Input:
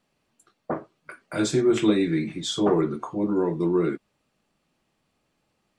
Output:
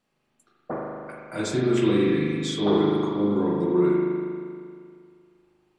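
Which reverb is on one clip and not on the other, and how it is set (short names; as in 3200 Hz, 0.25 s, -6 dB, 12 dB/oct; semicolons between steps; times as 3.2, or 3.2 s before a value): spring tank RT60 2.2 s, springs 39 ms, chirp 60 ms, DRR -3.5 dB; gain -4 dB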